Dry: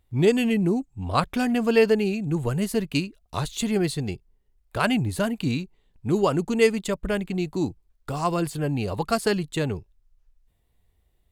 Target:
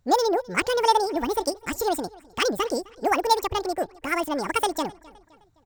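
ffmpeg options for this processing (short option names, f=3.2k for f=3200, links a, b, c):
-filter_complex "[0:a]equalizer=f=100:t=o:w=0.68:g=-5.5,asplit=2[a][b];[b]adelay=517,lowpass=f=3.7k:p=1,volume=-23dB,asplit=2[c][d];[d]adelay=517,lowpass=f=3.7k:p=1,volume=0.49,asplit=2[e][f];[f]adelay=517,lowpass=f=3.7k:p=1,volume=0.49[g];[a][c][e][g]amix=inputs=4:normalize=0,asetrate=88200,aresample=44100"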